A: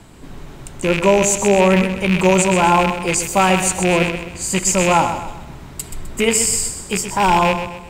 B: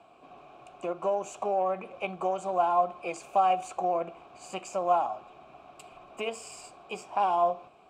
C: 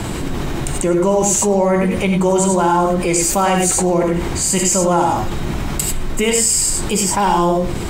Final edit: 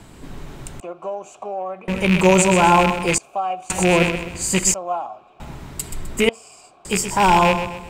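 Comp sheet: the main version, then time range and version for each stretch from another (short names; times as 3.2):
A
0.8–1.88 from B
3.18–3.7 from B
4.74–5.4 from B
6.29–6.85 from B
not used: C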